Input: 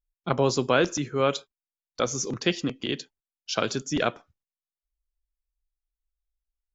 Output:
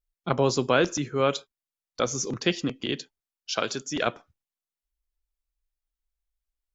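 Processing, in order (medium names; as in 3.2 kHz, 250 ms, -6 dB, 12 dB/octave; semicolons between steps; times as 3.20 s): 3.52–4.07 s: bass shelf 270 Hz -9 dB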